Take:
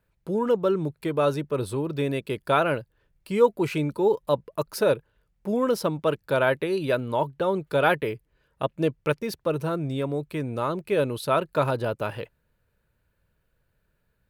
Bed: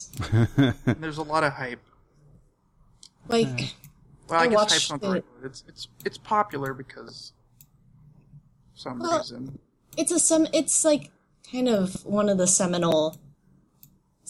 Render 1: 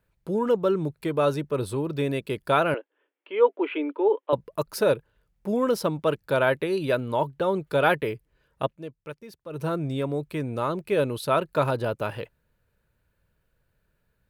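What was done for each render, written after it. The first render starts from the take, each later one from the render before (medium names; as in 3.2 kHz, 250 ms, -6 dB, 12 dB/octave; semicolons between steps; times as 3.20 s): 2.74–4.33 s: Chebyshev band-pass 280–3300 Hz, order 5; 8.65–9.64 s: dip -14 dB, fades 0.14 s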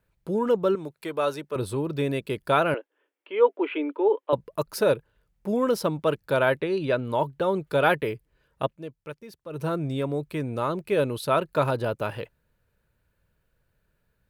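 0.75–1.56 s: high-pass 570 Hz 6 dB/octave; 6.60–7.05 s: distance through air 77 m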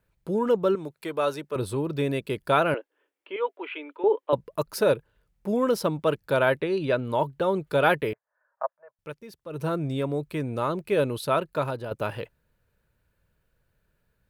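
3.36–4.04 s: high-pass 1.4 kHz 6 dB/octave; 8.13–8.99 s: elliptic band-pass 600–1700 Hz; 11.19–11.91 s: fade out, to -8.5 dB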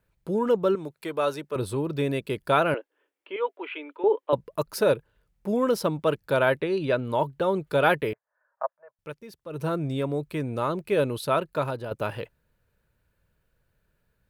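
no audible change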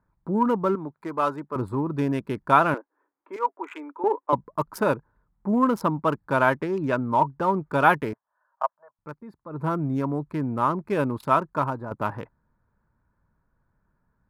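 local Wiener filter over 15 samples; graphic EQ 250/500/1000/4000 Hz +7/-8/+11/-6 dB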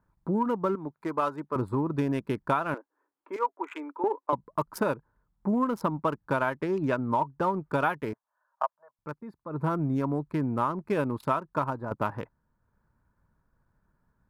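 transient shaper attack +1 dB, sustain -4 dB; compression 6:1, threshold -23 dBFS, peak gain reduction 11.5 dB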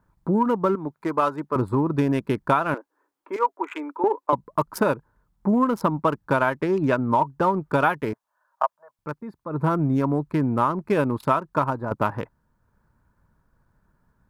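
trim +6 dB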